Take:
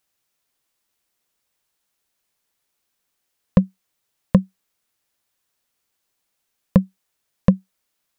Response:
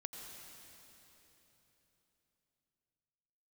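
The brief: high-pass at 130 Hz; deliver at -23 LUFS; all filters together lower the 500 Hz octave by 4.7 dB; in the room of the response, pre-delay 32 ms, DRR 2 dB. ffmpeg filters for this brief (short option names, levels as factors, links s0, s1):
-filter_complex "[0:a]highpass=130,equalizer=f=500:t=o:g=-5,asplit=2[s0][s1];[1:a]atrim=start_sample=2205,adelay=32[s2];[s1][s2]afir=irnorm=-1:irlink=0,volume=1.06[s3];[s0][s3]amix=inputs=2:normalize=0"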